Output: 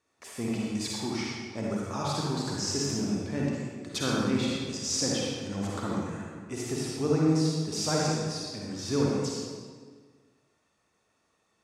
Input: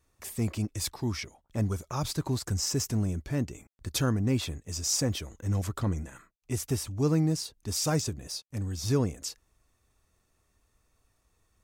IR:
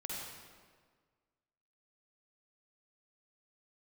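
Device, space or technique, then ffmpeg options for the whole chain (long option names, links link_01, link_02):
supermarket ceiling speaker: -filter_complex "[0:a]highpass=210,lowpass=6700[link_01];[1:a]atrim=start_sample=2205[link_02];[link_01][link_02]afir=irnorm=-1:irlink=0,volume=3.5dB"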